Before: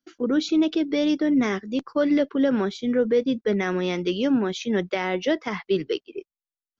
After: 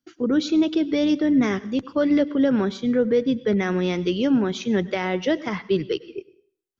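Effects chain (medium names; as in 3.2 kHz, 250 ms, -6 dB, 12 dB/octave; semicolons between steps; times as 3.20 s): peaking EQ 95 Hz +11.5 dB 1.4 oct; on a send: reverberation RT60 0.55 s, pre-delay 87 ms, DRR 18.5 dB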